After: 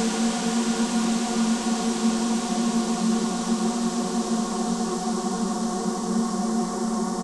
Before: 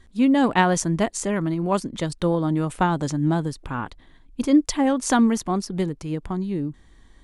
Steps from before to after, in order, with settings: echo from a far wall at 35 m, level -10 dB; painted sound rise, 4.82–5.33 s, 210–9100 Hz -25 dBFS; on a send: delay 165 ms -5.5 dB; on the sum: Paulstretch 46×, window 0.50 s, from 5.40 s; trim -5 dB

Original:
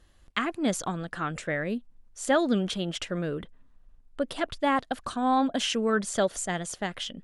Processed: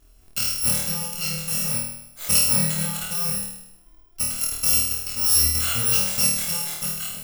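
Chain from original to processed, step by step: bit-reversed sample order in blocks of 128 samples; flutter echo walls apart 4.4 m, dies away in 0.8 s; trim +1 dB

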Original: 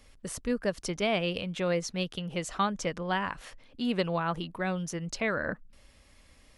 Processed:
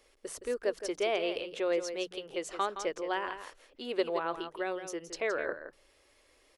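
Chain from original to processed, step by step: resonant low shelf 270 Hz -11 dB, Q 3; hum notches 60/120/180 Hz; delay 168 ms -10 dB; trim -4.5 dB

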